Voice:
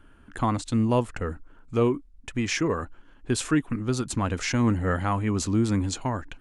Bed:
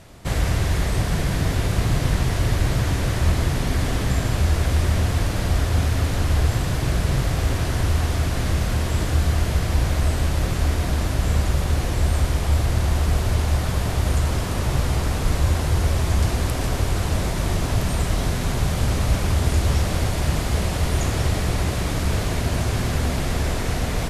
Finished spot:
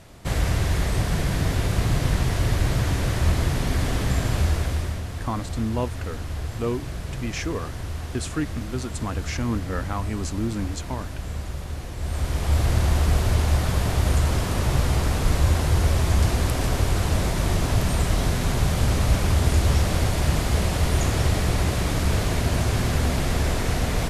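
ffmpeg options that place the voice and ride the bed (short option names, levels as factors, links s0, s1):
-filter_complex "[0:a]adelay=4850,volume=0.631[s0];[1:a]volume=2.99,afade=t=out:st=4.4:d=0.62:silence=0.334965,afade=t=in:st=11.97:d=0.71:silence=0.281838[s1];[s0][s1]amix=inputs=2:normalize=0"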